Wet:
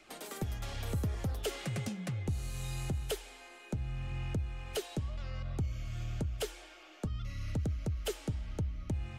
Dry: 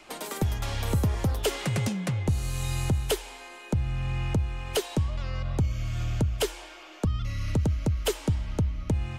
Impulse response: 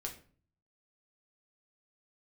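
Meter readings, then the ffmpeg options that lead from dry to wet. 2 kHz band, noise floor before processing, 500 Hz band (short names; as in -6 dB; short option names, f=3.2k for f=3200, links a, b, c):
-9.0 dB, -46 dBFS, -9.0 dB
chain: -filter_complex "[0:a]asplit=2[a][b];[b]asoftclip=type=tanh:threshold=-28dB,volume=-8dB[c];[a][c]amix=inputs=2:normalize=0,bandreject=f=980:w=6.3,flanger=delay=0.5:depth=5.5:regen=-71:speed=0.91:shape=sinusoidal,volume=-6.5dB"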